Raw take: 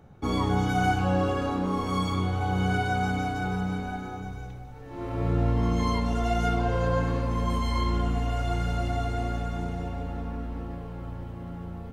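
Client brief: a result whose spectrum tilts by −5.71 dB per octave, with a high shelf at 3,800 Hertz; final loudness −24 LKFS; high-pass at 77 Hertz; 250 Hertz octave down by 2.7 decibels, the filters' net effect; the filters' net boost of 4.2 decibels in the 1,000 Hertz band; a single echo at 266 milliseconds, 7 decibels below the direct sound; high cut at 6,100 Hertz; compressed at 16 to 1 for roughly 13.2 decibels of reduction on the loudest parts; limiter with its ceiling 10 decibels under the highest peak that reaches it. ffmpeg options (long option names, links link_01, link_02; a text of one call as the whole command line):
ffmpeg -i in.wav -af "highpass=77,lowpass=6100,equalizer=frequency=250:width_type=o:gain=-4,equalizer=frequency=1000:width_type=o:gain=6.5,highshelf=frequency=3800:gain=-3.5,acompressor=threshold=-31dB:ratio=16,alimiter=level_in=9dB:limit=-24dB:level=0:latency=1,volume=-9dB,aecho=1:1:266:0.447,volume=16.5dB" out.wav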